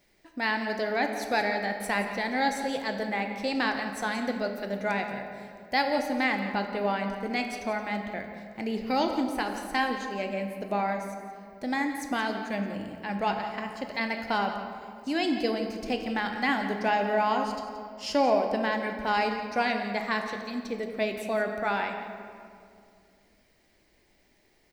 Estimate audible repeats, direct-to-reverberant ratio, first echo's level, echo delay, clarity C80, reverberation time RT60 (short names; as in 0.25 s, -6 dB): 1, 4.0 dB, -13.5 dB, 0.174 s, 6.5 dB, 2.4 s